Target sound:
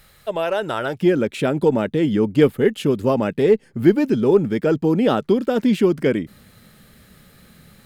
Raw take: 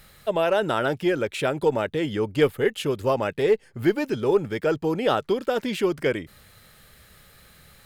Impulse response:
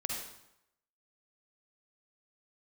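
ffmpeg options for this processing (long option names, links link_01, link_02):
-af "asetnsamples=nb_out_samples=441:pad=0,asendcmd='1.01 equalizer g 13',equalizer=frequency=220:width=0.98:gain=-2"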